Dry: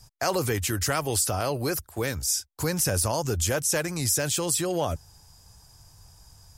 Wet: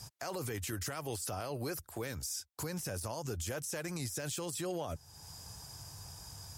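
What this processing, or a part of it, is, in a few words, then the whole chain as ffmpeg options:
podcast mastering chain: -af "highpass=85,deesser=0.45,acompressor=threshold=-47dB:ratio=2.5,alimiter=level_in=10.5dB:limit=-24dB:level=0:latency=1:release=42,volume=-10.5dB,volume=6dB" -ar 48000 -c:a libmp3lame -b:a 112k

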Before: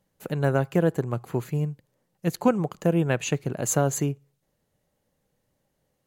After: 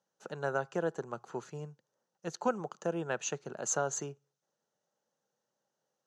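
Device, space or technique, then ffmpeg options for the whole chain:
television speaker: -af "highpass=frequency=180:width=0.5412,highpass=frequency=180:width=1.3066,equalizer=frequency=180:width_type=q:width=4:gain=-6,equalizer=frequency=280:width_type=q:width=4:gain=-10,equalizer=frequency=870:width_type=q:width=4:gain=4,equalizer=frequency=1400:width_type=q:width=4:gain=7,equalizer=frequency=2200:width_type=q:width=4:gain=-9,equalizer=frequency=6000:width_type=q:width=4:gain=9,lowpass=frequency=7500:width=0.5412,lowpass=frequency=7500:width=1.3066,volume=-8.5dB"

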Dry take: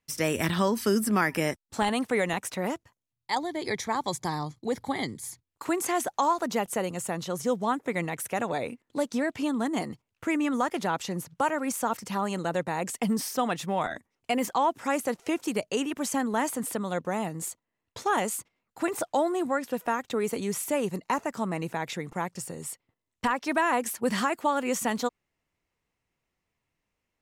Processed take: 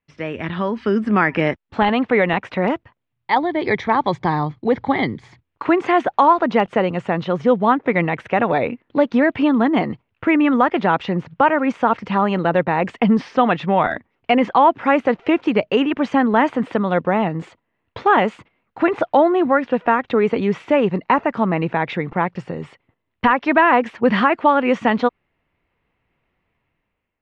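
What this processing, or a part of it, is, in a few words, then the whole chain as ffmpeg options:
action camera in a waterproof case: -af "lowpass=frequency=3000:width=0.5412,lowpass=frequency=3000:width=1.3066,dynaudnorm=framelen=370:gausssize=5:maxgain=13dB" -ar 44100 -c:a aac -b:a 128k

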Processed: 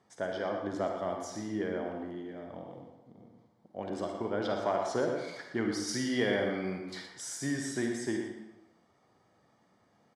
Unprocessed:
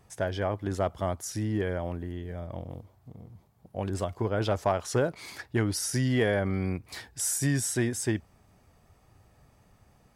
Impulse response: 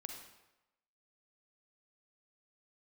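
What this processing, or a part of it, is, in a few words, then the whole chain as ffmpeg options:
supermarket ceiling speaker: -filter_complex "[0:a]highpass=220,lowpass=5600,bandreject=frequency=2600:width=5.5[link_01];[1:a]atrim=start_sample=2205[link_02];[link_01][link_02]afir=irnorm=-1:irlink=0,equalizer=frequency=220:width_type=o:width=0.75:gain=3,aecho=1:1:119:0.316,asplit=3[link_03][link_04][link_05];[link_03]afade=type=out:start_time=5.87:duration=0.02[link_06];[link_04]adynamicequalizer=threshold=0.00447:dfrequency=2200:dqfactor=0.7:tfrequency=2200:tqfactor=0.7:attack=5:release=100:ratio=0.375:range=3:mode=boostabove:tftype=highshelf,afade=type=in:start_time=5.87:duration=0.02,afade=type=out:start_time=7.06:duration=0.02[link_07];[link_05]afade=type=in:start_time=7.06:duration=0.02[link_08];[link_06][link_07][link_08]amix=inputs=3:normalize=0"

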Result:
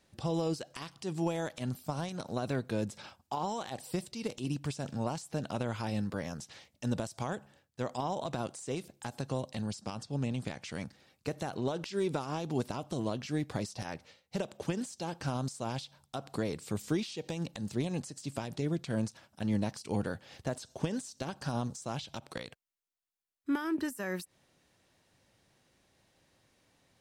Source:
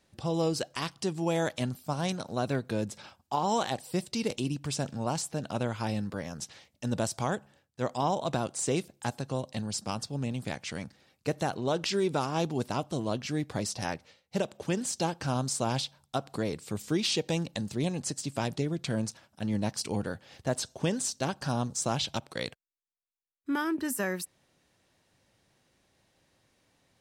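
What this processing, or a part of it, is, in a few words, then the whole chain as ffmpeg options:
de-esser from a sidechain: -filter_complex "[0:a]asettb=1/sr,asplit=3[link_01][link_02][link_03];[link_01]atrim=end=9.754[link_04];[link_02]atrim=start=9.75:end=10.62,asetpts=PTS-STARTPTS,afade=type=in:duration=0.004:curve=qsin,afade=type=out:start_time=0.866:duration=0.004:curve=qsin,lowpass=9100[link_05];[link_03]atrim=start=10.616[link_06];[link_04][link_05]acrossfade=duration=0.004:curve1=hsin:curve2=qsin[link_07];[link_07][link_06]acrossfade=duration=0.004:curve1=qsin:curve2=hsin,asplit=2[link_08][link_09];[link_09]highpass=frequency=5500:poles=1,apad=whole_len=1190942[link_10];[link_08][link_10]sidechaincompress=threshold=-43dB:ratio=12:attack=2:release=99"

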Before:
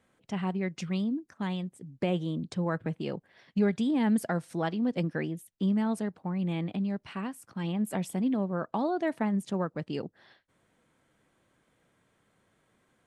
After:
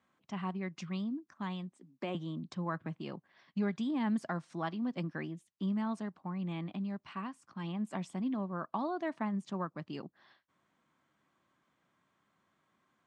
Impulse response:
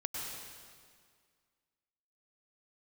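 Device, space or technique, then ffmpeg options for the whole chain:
car door speaker: -filter_complex "[0:a]asettb=1/sr,asplit=3[link_01][link_02][link_03];[link_01]atrim=end=1.724[link_04];[link_02]atrim=start=1.72:end=2.15,asetpts=PTS-STARTPTS,afade=type=in:duration=0.004:curve=qsin,afade=type=out:start_time=0.426:duration=0.004:curve=qsin,highpass=frequency=210:width=0.5412,highpass=frequency=210:width=1.3066[link_05];[link_03]atrim=start=2.146[link_06];[link_04][link_05]acrossfade=duration=0.004:curve1=hsin:curve2=qsin[link_07];[link_07][link_06]acrossfade=duration=0.004:curve1=qsin:curve2=hsin,highpass=93,equalizer=frequency=110:width_type=q:width=4:gain=-7,equalizer=frequency=470:width_type=q:width=4:gain=-9,equalizer=frequency=1100:width_type=q:width=4:gain=8,lowpass=frequency=7200:width=0.5412,lowpass=frequency=7200:width=1.3066,volume=-6dB"

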